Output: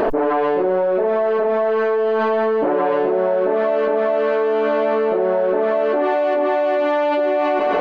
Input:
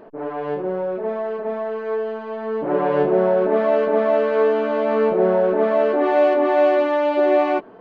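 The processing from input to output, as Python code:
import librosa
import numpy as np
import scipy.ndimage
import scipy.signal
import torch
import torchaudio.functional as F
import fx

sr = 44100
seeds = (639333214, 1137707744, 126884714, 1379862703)

p1 = fx.peak_eq(x, sr, hz=140.0, db=-14.0, octaves=1.0)
p2 = p1 + fx.echo_thinned(p1, sr, ms=137, feedback_pct=46, hz=420.0, wet_db=-16.0, dry=0)
p3 = fx.env_flatten(p2, sr, amount_pct=100)
y = p3 * 10.0 ** (-3.5 / 20.0)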